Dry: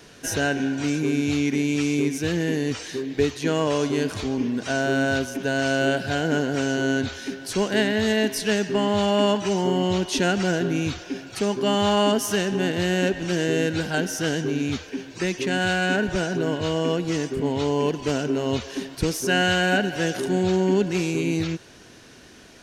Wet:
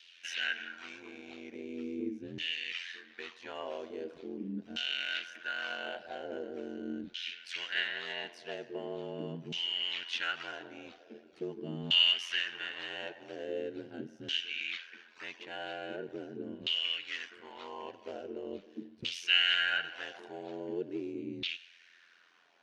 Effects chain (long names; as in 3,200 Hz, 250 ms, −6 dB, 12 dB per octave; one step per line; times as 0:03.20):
meter weighting curve D
auto-filter band-pass saw down 0.42 Hz 210–3,200 Hz
ring modulation 43 Hz
flanger 0.19 Hz, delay 2.8 ms, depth 7.8 ms, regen +78%
dynamic equaliser 3,000 Hz, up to +7 dB, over −48 dBFS, Q 1.6
level −4 dB